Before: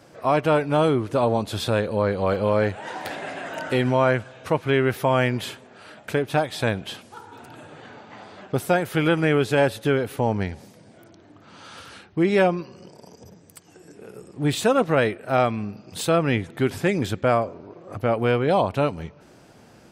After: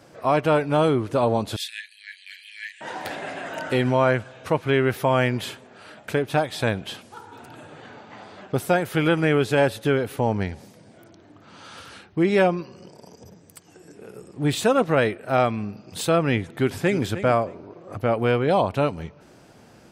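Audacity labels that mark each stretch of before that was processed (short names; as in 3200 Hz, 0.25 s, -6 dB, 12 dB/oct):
1.560000	2.810000	Chebyshev high-pass 1700 Hz, order 8
16.440000	17.020000	echo throw 0.31 s, feedback 15%, level -12 dB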